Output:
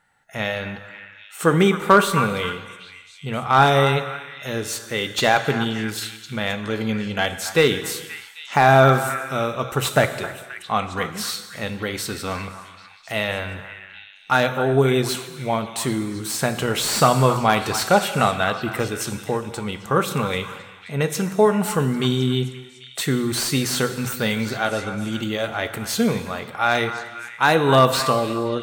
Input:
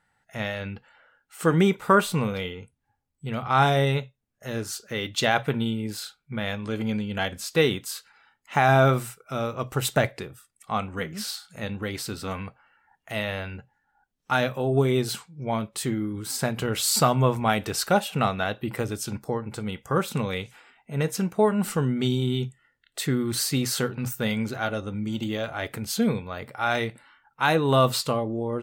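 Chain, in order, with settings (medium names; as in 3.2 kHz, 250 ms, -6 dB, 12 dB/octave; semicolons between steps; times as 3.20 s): bass shelf 290 Hz -5 dB; band-stop 4.9 kHz, Q 16; on a send: repeats whose band climbs or falls 264 ms, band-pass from 1.2 kHz, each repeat 0.7 oct, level -9 dB; on the sum: gated-style reverb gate 500 ms falling, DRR 10.5 dB; slew-rate limiter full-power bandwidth 260 Hz; trim +6 dB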